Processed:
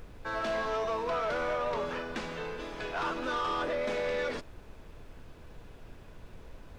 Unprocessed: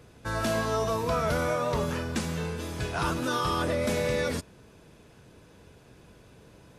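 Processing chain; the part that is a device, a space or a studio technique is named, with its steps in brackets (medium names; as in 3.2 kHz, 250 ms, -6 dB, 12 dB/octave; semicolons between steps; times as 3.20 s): aircraft cabin announcement (band-pass 370–3400 Hz; saturation -26 dBFS, distortion -15 dB; brown noise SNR 12 dB)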